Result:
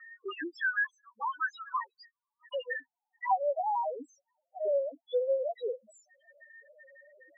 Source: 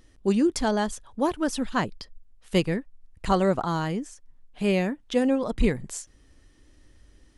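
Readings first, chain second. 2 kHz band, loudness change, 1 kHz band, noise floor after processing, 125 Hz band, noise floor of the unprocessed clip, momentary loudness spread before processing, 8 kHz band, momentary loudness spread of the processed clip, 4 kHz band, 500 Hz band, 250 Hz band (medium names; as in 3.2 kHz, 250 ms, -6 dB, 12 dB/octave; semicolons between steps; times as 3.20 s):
+1.5 dB, -7.0 dB, -2.5 dB, under -85 dBFS, under -40 dB, -58 dBFS, 11 LU, under -25 dB, 12 LU, -14.5 dB, -5.5 dB, -25.5 dB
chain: high-pass sweep 1.3 kHz -> 640 Hz, 1.62–3.97 s; in parallel at -4.5 dB: bit crusher 6-bit; on the sum: loudest bins only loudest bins 1; cabinet simulation 250–4800 Hz, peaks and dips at 260 Hz +10 dB, 430 Hz -4 dB, 1.7 kHz +8 dB; three bands compressed up and down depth 70%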